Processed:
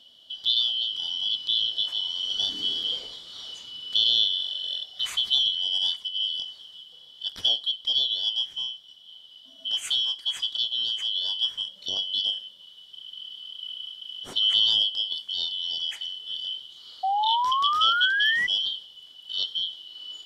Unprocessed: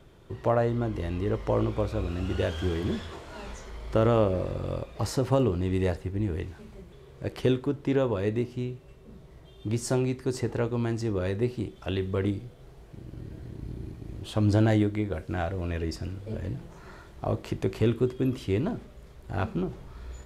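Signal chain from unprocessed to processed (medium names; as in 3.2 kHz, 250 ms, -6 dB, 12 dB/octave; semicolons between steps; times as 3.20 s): four frequency bands reordered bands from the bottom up 3412; painted sound rise, 17.03–18.47 s, 750–2000 Hz -24 dBFS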